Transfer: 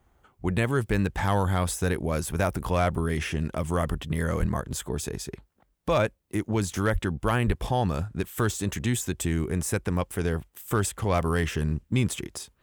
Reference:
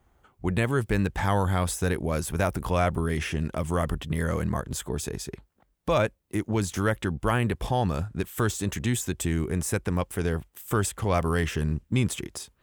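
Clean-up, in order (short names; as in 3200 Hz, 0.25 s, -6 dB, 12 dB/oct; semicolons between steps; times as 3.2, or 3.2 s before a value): clip repair -15 dBFS; 4.39–4.51 HPF 140 Hz 24 dB/oct; 6.92–7.04 HPF 140 Hz 24 dB/oct; 7.46–7.58 HPF 140 Hz 24 dB/oct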